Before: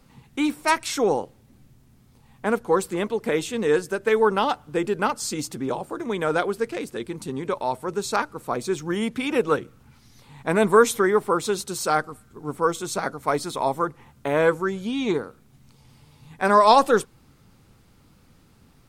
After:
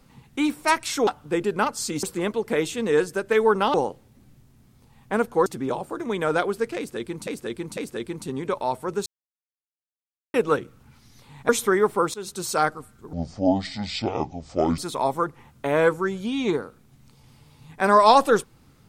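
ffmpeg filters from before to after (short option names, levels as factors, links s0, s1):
-filter_complex "[0:a]asplit=13[s0][s1][s2][s3][s4][s5][s6][s7][s8][s9][s10][s11][s12];[s0]atrim=end=1.072[s13];[s1]atrim=start=4.498:end=5.462[s14];[s2]atrim=start=2.788:end=4.502[s15];[s3]atrim=start=1.068:end=2.792[s16];[s4]atrim=start=5.458:end=7.272[s17];[s5]atrim=start=6.768:end=7.272[s18];[s6]atrim=start=6.768:end=8.06,asetpts=PTS-STARTPTS,afade=t=out:st=1.288:d=0.004:c=hsin[s19];[s7]atrim=start=8.06:end=9.34,asetpts=PTS-STARTPTS,volume=0[s20];[s8]atrim=start=9.34:end=10.492,asetpts=PTS-STARTPTS,afade=t=in:d=0.004:c=hsin[s21];[s9]atrim=start=10.808:end=11.46,asetpts=PTS-STARTPTS,afade=t=out:st=0.648:d=0.004:c=hsin:silence=0.11885[s22];[s10]atrim=start=11.46:end=12.454,asetpts=PTS-STARTPTS,afade=t=in:d=0.27:silence=0.11885[s23];[s11]atrim=start=12.45:end=13.39,asetpts=PTS-STARTPTS,asetrate=25137,aresample=44100,atrim=end_sample=72726,asetpts=PTS-STARTPTS[s24];[s12]atrim=start=13.386[s25];[s13][s14]acrossfade=d=0.004:c1=hsin:c2=hsin[s26];[s26][s15]acrossfade=d=0.004:c1=hsin:c2=hsin[s27];[s27][s16]acrossfade=d=0.004:c1=hsin:c2=hsin[s28];[s28][s17]acrossfade=d=0.004:c1=hsin:c2=hsin[s29];[s29][s18]acrossfade=d=0.004:c1=hsin:c2=hsin[s30];[s19][s20][s21]concat=n=3:v=0:a=1[s31];[s30][s31]acrossfade=d=0.004:c1=hsin:c2=hsin[s32];[s22][s23]concat=n=2:v=0:a=1[s33];[s32][s33]acrossfade=d=0.004:c1=hsin:c2=hsin[s34];[s34][s24]acrossfade=d=0.004:c1=hsin:c2=hsin[s35];[s35][s25]acrossfade=d=0.004:c1=hsin:c2=hsin"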